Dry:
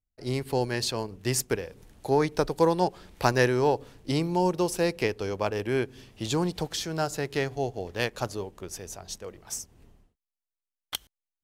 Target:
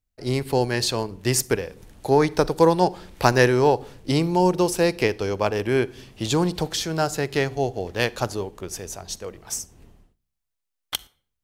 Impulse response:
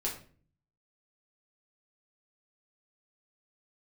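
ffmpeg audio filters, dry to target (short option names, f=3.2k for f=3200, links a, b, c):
-filter_complex "[0:a]asplit=2[a][b];[1:a]atrim=start_sample=2205,asetrate=38808,aresample=44100,adelay=43[c];[b][c]afir=irnorm=-1:irlink=0,volume=-25.5dB[d];[a][d]amix=inputs=2:normalize=0,volume=5.5dB"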